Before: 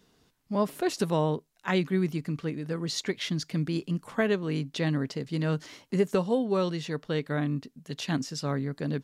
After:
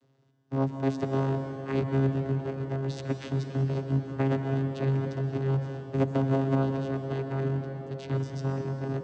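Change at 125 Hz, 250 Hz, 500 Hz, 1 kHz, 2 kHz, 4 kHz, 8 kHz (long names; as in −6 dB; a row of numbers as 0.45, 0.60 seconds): +4.5 dB, −1.0 dB, −1.5 dB, −1.5 dB, −6.0 dB, −12.0 dB, below −10 dB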